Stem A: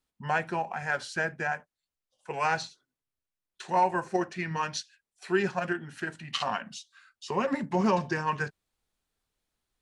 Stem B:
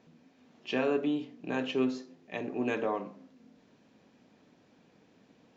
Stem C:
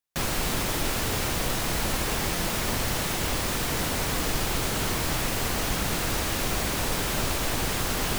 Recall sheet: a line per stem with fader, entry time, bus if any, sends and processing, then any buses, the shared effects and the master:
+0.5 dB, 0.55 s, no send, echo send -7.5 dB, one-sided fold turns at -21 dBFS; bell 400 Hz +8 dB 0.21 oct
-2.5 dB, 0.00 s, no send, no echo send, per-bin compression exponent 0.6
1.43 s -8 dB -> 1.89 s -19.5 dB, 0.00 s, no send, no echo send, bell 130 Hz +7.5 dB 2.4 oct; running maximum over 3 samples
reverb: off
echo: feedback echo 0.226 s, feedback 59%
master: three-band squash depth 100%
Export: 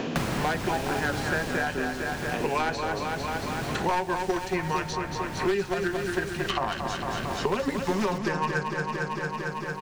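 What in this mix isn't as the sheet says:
stem A: entry 0.55 s -> 0.15 s; stem B -2.5 dB -> -9.0 dB

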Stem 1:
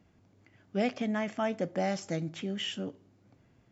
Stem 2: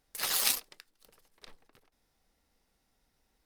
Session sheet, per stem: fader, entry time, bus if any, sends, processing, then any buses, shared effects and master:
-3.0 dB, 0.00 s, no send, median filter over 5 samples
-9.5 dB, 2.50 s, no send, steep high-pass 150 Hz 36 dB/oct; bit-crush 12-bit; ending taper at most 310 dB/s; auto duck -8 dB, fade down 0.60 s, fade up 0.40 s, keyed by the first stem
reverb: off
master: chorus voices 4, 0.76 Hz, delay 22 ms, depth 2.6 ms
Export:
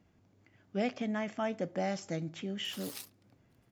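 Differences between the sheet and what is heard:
stem 1: missing median filter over 5 samples; master: missing chorus voices 4, 0.76 Hz, delay 22 ms, depth 2.6 ms

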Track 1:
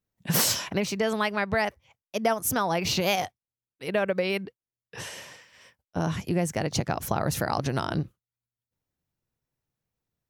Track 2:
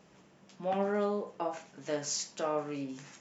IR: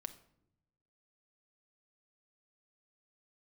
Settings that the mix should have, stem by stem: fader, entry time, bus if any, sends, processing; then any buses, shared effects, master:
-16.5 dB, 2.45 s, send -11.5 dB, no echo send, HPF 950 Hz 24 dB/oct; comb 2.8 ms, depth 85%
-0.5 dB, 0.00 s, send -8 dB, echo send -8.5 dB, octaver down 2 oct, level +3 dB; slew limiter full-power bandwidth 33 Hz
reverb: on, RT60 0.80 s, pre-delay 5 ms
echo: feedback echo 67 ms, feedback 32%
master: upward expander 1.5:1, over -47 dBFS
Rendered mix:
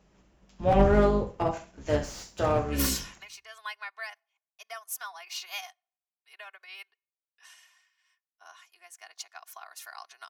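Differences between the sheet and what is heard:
stem 1 -16.5 dB -> -6.0 dB; stem 2 -0.5 dB -> +8.0 dB

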